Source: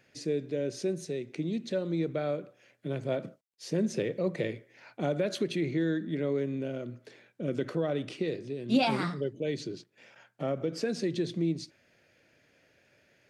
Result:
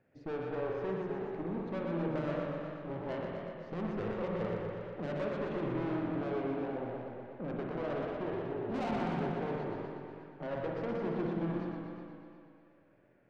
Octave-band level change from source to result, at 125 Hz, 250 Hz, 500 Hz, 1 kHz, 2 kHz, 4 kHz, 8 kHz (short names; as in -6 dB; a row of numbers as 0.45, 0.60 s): -4.0 dB, -5.0 dB, -4.0 dB, 0.0 dB, -4.0 dB, -13.5 dB, under -20 dB